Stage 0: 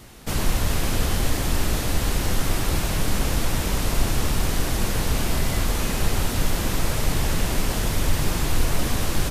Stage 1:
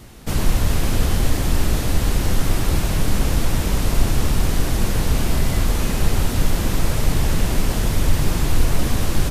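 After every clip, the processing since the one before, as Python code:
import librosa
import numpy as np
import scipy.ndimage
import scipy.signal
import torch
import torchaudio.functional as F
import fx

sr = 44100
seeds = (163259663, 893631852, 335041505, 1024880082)

y = fx.low_shelf(x, sr, hz=390.0, db=5.0)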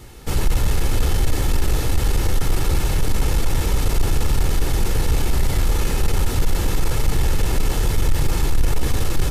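y = x + 0.42 * np.pad(x, (int(2.3 * sr / 1000.0), 0))[:len(x)]
y = 10.0 ** (-9.0 / 20.0) * np.tanh(y / 10.0 ** (-9.0 / 20.0))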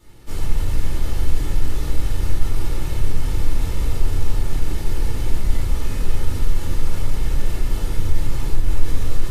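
y = fx.room_shoebox(x, sr, seeds[0], volume_m3=260.0, walls='mixed', distance_m=2.6)
y = y * 10.0 ** (-15.0 / 20.0)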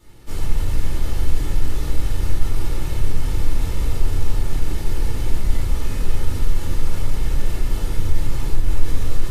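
y = x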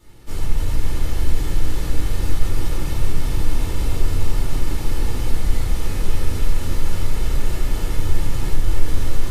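y = fx.echo_thinned(x, sr, ms=296, feedback_pct=83, hz=150.0, wet_db=-6.5)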